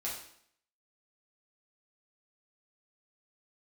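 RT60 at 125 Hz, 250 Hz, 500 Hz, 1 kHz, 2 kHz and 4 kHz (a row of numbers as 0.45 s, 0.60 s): 0.60 s, 0.70 s, 0.65 s, 0.65 s, 0.65 s, 0.60 s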